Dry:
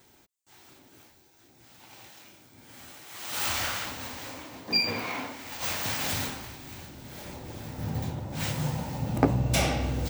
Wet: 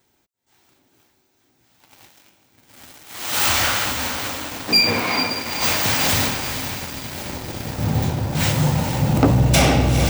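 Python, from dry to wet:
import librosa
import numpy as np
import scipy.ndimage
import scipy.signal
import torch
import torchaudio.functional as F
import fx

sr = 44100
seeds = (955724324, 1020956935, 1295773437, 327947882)

y = fx.echo_diffused(x, sr, ms=456, feedback_pct=57, wet_db=-9.0)
y = fx.leveller(y, sr, passes=3)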